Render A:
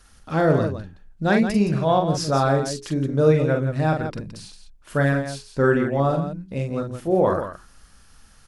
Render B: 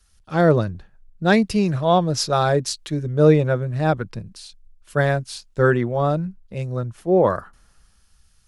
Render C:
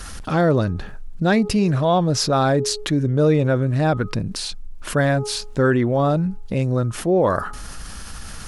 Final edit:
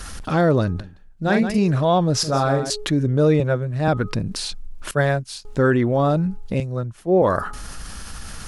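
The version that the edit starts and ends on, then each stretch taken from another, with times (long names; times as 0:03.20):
C
0:00.80–0:01.58: punch in from A
0:02.23–0:02.70: punch in from A
0:03.40–0:03.88: punch in from B
0:04.91–0:05.45: punch in from B
0:06.60–0:07.22: punch in from B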